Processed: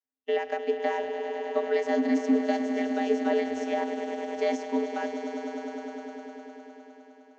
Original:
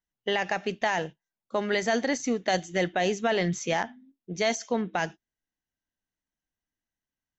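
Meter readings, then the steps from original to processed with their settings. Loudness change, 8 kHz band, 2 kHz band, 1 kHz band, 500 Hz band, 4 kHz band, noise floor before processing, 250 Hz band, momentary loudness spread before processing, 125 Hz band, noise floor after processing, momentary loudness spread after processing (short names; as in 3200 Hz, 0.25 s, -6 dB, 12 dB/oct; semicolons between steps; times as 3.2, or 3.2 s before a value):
-0.5 dB, n/a, -6.5 dB, -1.5 dB, +1.5 dB, -9.0 dB, under -85 dBFS, +4.0 dB, 6 LU, under -20 dB, -56 dBFS, 15 LU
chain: swelling echo 0.102 s, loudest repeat 5, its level -12 dB; vocoder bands 32, square 87.1 Hz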